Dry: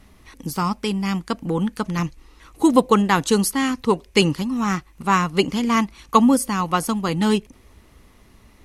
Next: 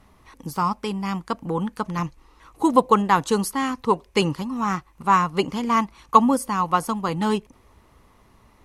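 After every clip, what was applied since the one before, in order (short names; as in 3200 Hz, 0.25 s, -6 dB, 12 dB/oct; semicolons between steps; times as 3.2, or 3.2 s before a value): graphic EQ 125/500/1000 Hz +4/+3/+9 dB; gain -6.5 dB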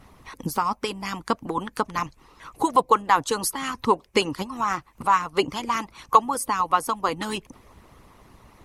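harmonic-percussive split harmonic -16 dB; compressor 1.5:1, threshold -39 dBFS, peak gain reduction 11 dB; gain +9 dB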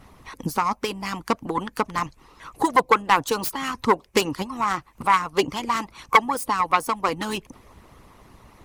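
self-modulated delay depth 0.19 ms; gain +1.5 dB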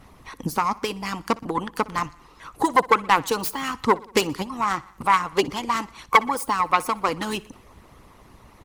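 feedback echo 61 ms, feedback 59%, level -22 dB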